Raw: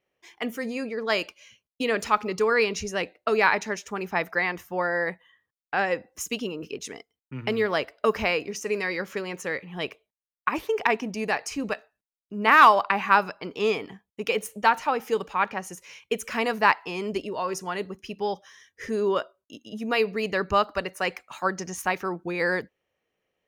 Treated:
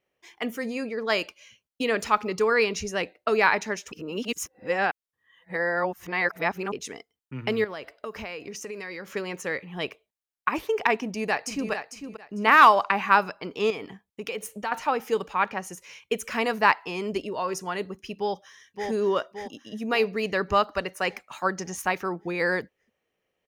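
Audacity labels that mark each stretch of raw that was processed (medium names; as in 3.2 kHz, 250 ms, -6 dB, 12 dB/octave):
3.920000	6.720000	reverse
7.640000	9.080000	compression 4:1, threshold -34 dBFS
11.020000	11.710000	echo throw 450 ms, feedback 20%, level -8.5 dB
13.700000	14.720000	compression 2.5:1, threshold -31 dBFS
18.170000	18.900000	echo throw 570 ms, feedback 55%, level -5 dB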